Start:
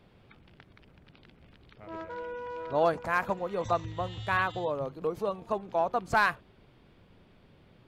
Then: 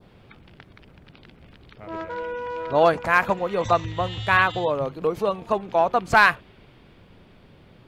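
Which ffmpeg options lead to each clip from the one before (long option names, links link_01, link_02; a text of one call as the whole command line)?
ffmpeg -i in.wav -af "adynamicequalizer=threshold=0.00501:dfrequency=2500:dqfactor=1:tfrequency=2500:tqfactor=1:attack=5:release=100:ratio=0.375:range=2.5:mode=boostabove:tftype=bell,volume=7.5dB" out.wav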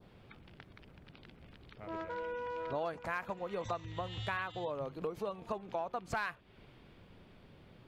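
ffmpeg -i in.wav -af "acompressor=threshold=-29dB:ratio=4,volume=-7dB" out.wav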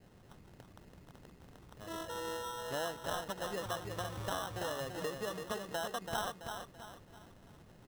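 ffmpeg -i in.wav -filter_complex "[0:a]asplit=2[link_01][link_02];[link_02]aecho=0:1:333|666|999|1332|1665:0.501|0.205|0.0842|0.0345|0.0142[link_03];[link_01][link_03]amix=inputs=2:normalize=0,acrusher=samples=19:mix=1:aa=0.000001,volume=-1.5dB" out.wav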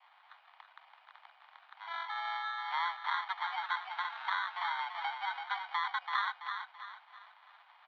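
ffmpeg -i in.wav -af "highpass=frequency=490:width_type=q:width=0.5412,highpass=frequency=490:width_type=q:width=1.307,lowpass=frequency=3500:width_type=q:width=0.5176,lowpass=frequency=3500:width_type=q:width=0.7071,lowpass=frequency=3500:width_type=q:width=1.932,afreqshift=350,volume=5dB" out.wav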